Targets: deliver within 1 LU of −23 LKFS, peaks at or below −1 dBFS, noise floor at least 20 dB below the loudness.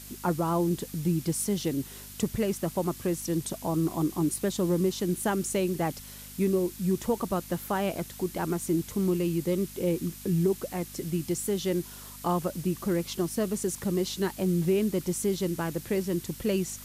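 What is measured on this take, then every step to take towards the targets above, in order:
mains hum 50 Hz; hum harmonics up to 250 Hz; level of the hum −48 dBFS; background noise floor −45 dBFS; target noise floor −49 dBFS; integrated loudness −29.0 LKFS; sample peak −15.0 dBFS; target loudness −23.0 LKFS
→ hum removal 50 Hz, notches 5
noise reduction from a noise print 6 dB
level +6 dB

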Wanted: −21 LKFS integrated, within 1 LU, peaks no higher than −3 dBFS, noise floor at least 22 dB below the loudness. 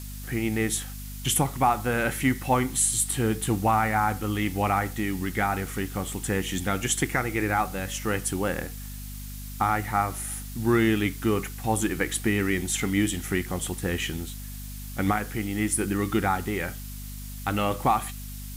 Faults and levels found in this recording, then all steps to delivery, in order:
mains hum 50 Hz; hum harmonics up to 250 Hz; level of the hum −36 dBFS; background noise floor −37 dBFS; target noise floor −49 dBFS; integrated loudness −26.5 LKFS; sample peak −10.5 dBFS; target loudness −21.0 LKFS
→ hum removal 50 Hz, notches 5
noise reduction from a noise print 12 dB
level +5.5 dB

